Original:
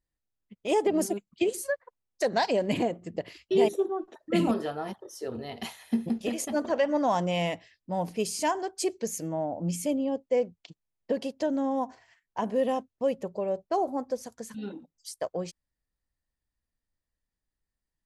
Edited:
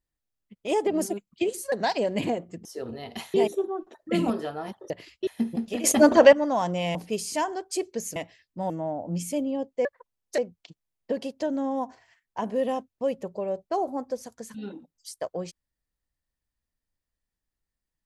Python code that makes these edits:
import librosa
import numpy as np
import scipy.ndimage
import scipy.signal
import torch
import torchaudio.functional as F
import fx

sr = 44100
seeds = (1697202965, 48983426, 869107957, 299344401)

y = fx.edit(x, sr, fx.move(start_s=1.72, length_s=0.53, to_s=10.38),
    fx.swap(start_s=3.18, length_s=0.37, other_s=5.11, other_length_s=0.69),
    fx.clip_gain(start_s=6.37, length_s=0.49, db=12.0),
    fx.move(start_s=7.48, length_s=0.54, to_s=9.23), tone=tone)